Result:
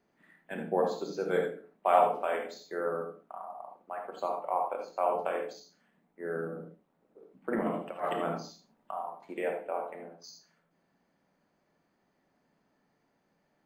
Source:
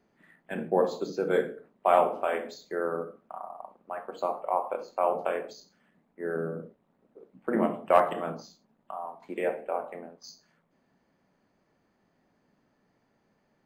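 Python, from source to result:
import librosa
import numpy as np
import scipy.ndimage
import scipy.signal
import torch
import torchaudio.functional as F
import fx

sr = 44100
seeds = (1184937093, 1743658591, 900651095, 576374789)

y = fx.low_shelf(x, sr, hz=330.0, db=-4.0)
y = fx.over_compress(y, sr, threshold_db=-28.0, ratio=-0.5, at=(7.52, 9.01))
y = fx.rev_gated(y, sr, seeds[0], gate_ms=100, shape='rising', drr_db=5.0)
y = F.gain(torch.from_numpy(y), -3.0).numpy()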